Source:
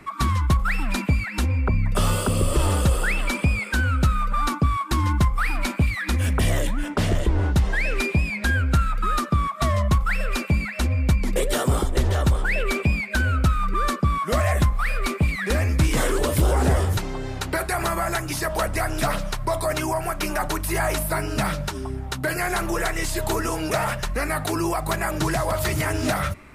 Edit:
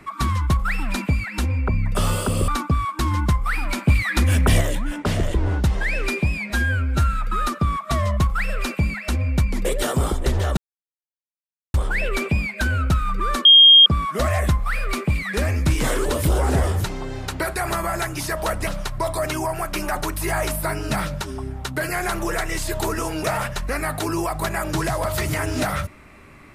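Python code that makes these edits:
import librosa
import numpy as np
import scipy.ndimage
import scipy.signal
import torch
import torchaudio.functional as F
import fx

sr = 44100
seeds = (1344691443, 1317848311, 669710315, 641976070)

y = fx.edit(x, sr, fx.cut(start_s=2.48, length_s=1.92),
    fx.clip_gain(start_s=5.8, length_s=0.73, db=4.5),
    fx.stretch_span(start_s=8.42, length_s=0.42, factor=1.5),
    fx.insert_silence(at_s=12.28, length_s=1.17),
    fx.insert_tone(at_s=13.99, length_s=0.41, hz=3230.0, db=-6.0),
    fx.cut(start_s=18.8, length_s=0.34), tone=tone)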